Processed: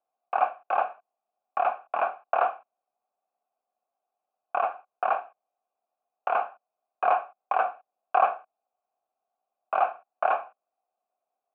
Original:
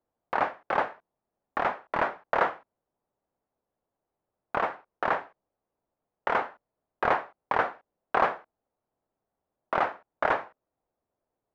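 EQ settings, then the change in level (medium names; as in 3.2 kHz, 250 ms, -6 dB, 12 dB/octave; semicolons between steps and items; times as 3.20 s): vowel filter a; cabinet simulation 180–4900 Hz, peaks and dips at 220 Hz +7 dB, 850 Hz +5 dB, 1.5 kHz +9 dB, 2.6 kHz +6 dB; +6.0 dB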